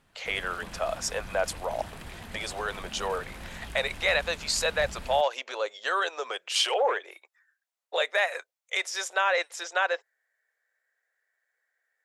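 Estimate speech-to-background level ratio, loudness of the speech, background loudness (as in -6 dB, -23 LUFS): 14.5 dB, -29.0 LUFS, -43.5 LUFS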